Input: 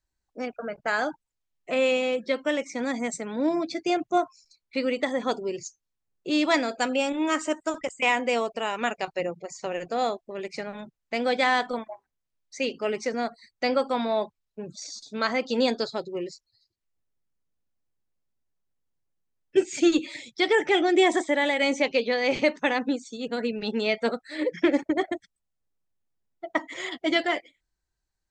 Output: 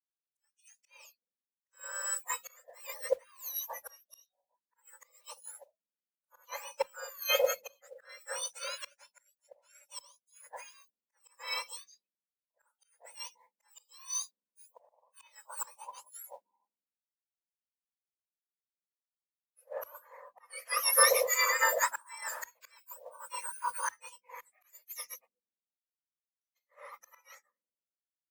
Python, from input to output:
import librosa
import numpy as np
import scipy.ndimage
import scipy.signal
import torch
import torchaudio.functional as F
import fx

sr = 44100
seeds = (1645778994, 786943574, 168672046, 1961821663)

y = fx.octave_mirror(x, sr, pivot_hz=2000.0)
y = fx.auto_swell(y, sr, attack_ms=506.0)
y = fx.small_body(y, sr, hz=(510.0, 1000.0, 2500.0), ring_ms=25, db=9)
y = fx.mod_noise(y, sr, seeds[0], snr_db=24)
y = fx.band_widen(y, sr, depth_pct=100)
y = F.gain(torch.from_numpy(y), -8.0).numpy()